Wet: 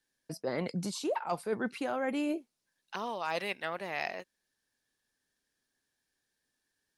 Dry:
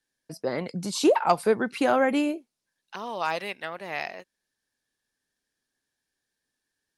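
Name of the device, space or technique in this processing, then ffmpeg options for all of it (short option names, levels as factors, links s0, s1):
compression on the reversed sound: -af "areverse,acompressor=threshold=0.0355:ratio=16,areverse"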